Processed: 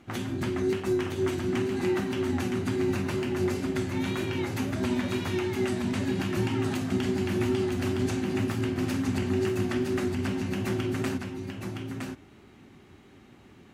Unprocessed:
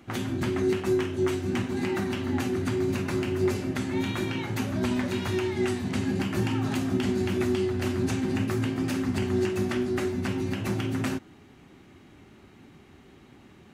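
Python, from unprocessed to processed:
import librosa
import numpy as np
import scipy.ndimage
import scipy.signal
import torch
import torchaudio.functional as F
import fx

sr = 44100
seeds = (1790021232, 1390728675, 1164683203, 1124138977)

y = x + 10.0 ** (-5.0 / 20.0) * np.pad(x, (int(965 * sr / 1000.0), 0))[:len(x)]
y = fx.wow_flutter(y, sr, seeds[0], rate_hz=2.1, depth_cents=27.0)
y = y * 10.0 ** (-2.0 / 20.0)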